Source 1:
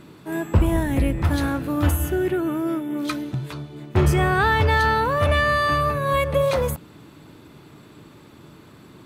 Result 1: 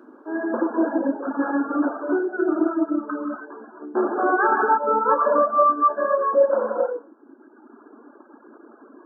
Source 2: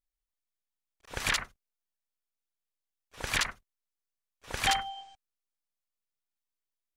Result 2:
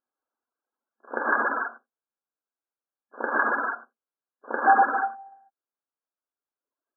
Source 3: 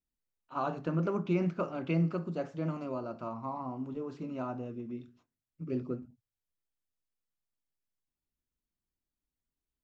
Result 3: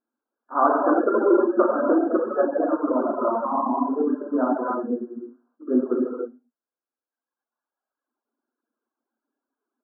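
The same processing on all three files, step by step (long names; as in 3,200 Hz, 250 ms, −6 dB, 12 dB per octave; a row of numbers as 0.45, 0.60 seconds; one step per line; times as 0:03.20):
brick-wall band-pass 220–1,700 Hz
reverb whose tail is shaped and stops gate 360 ms flat, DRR −5 dB
reverb reduction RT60 1.5 s
normalise the peak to −6 dBFS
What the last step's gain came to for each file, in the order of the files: −1.0, +10.0, +12.5 decibels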